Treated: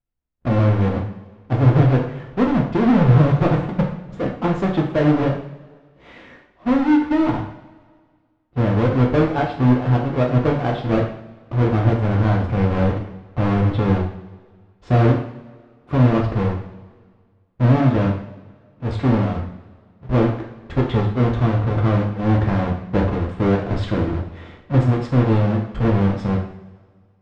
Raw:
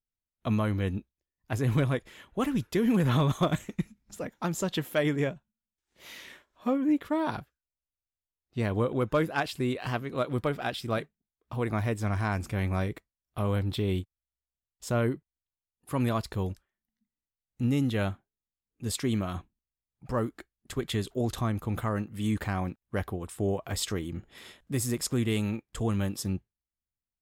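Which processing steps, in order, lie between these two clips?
half-waves squared off; two-slope reverb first 0.56 s, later 1.8 s, from -17 dB, DRR -0.5 dB; in parallel at -0.5 dB: vocal rider within 5 dB 0.5 s; on the sum: tape spacing loss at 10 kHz 43 dB

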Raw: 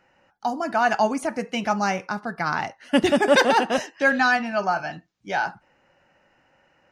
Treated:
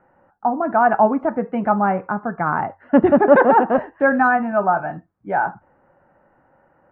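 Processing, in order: LPF 1400 Hz 24 dB/oct; de-hum 46.46 Hz, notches 2; gain +6 dB

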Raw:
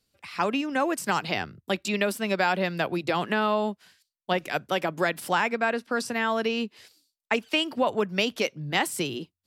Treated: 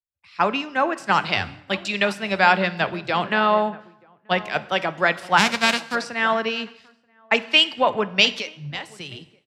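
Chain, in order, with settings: 5.37–5.94 spectral whitening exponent 0.3; LPF 4900 Hz 12 dB/oct; bell 320 Hz -7 dB 2 oct; 8.35–9.12 compressor 4:1, threshold -32 dBFS, peak gain reduction 10 dB; outdoor echo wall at 160 m, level -15 dB; plate-style reverb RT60 1.7 s, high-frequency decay 0.8×, DRR 12.5 dB; three-band expander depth 100%; gain +7 dB

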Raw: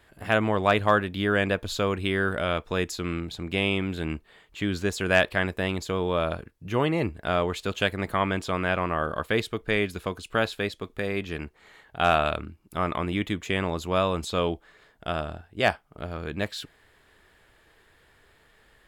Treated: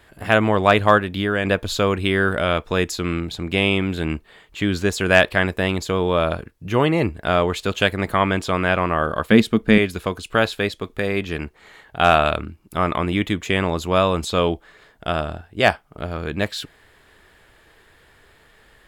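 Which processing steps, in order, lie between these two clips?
0.97–1.45 compressor 2:1, threshold -27 dBFS, peak gain reduction 5 dB; 9.31–9.78 bell 220 Hz +14 dB 0.69 oct; gain +6.5 dB

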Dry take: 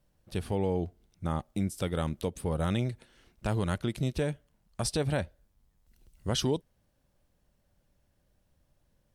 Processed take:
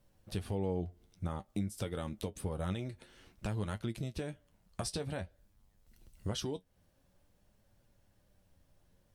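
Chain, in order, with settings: compressor 5:1, threshold -37 dBFS, peak gain reduction 12.5 dB; flange 0.51 Hz, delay 8.8 ms, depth 2.7 ms, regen +50%; gain +6 dB

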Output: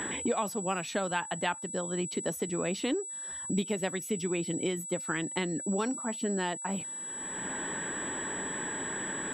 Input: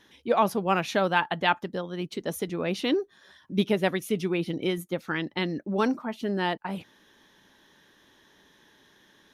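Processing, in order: whine 7800 Hz -34 dBFS; three-band squash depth 100%; gain -5.5 dB

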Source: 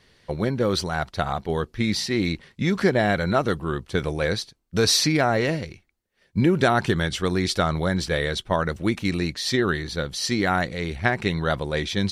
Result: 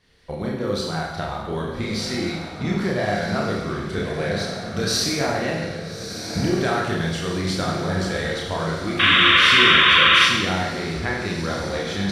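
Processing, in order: recorder AGC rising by 13 dB/s; chorus voices 2, 0.57 Hz, delay 30 ms, depth 1.9 ms; diffused feedback echo 1.288 s, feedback 46%, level -8 dB; painted sound noise, 8.99–10.25, 1000–3800 Hz -15 dBFS; Schroeder reverb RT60 1.1 s, combs from 33 ms, DRR 0.5 dB; gain -2 dB

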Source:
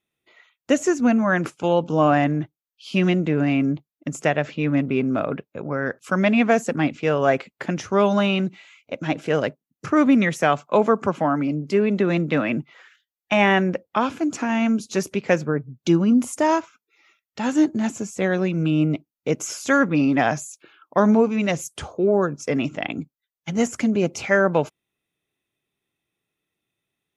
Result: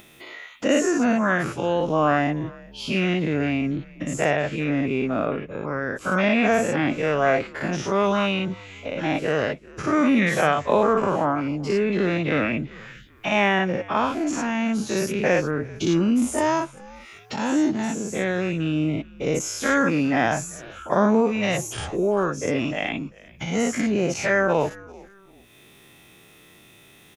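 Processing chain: spectral dilation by 0.12 s; upward compressor, threshold -21 dBFS; on a send: frequency-shifting echo 0.391 s, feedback 33%, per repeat -100 Hz, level -22 dB; on the sum: gain -5.5 dB

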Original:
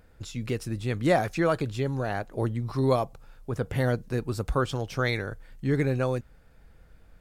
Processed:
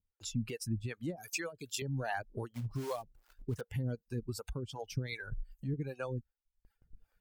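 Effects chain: per-bin expansion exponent 1.5; reverb removal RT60 0.63 s; 1.16–1.82 RIAA curve recording; gate with hold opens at -56 dBFS; 5.12–5.74 low shelf 140 Hz +11 dB; compressor 4:1, threshold -41 dBFS, peak gain reduction 18.5 dB; limiter -34.5 dBFS, peak gain reduction 5.5 dB; 2.54–3.61 short-mantissa float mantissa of 2-bit; harmonic tremolo 2.6 Hz, depth 100%, crossover 420 Hz; gain +10.5 dB

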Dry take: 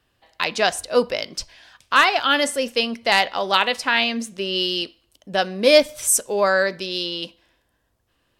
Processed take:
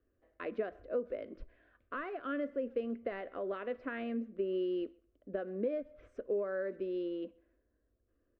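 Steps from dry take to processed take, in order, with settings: Bessel low-pass 930 Hz, order 4; compressor 16:1, threshold -25 dBFS, peak gain reduction 15.5 dB; fixed phaser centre 360 Hz, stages 4; speakerphone echo 0.13 s, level -26 dB; gain -3.5 dB

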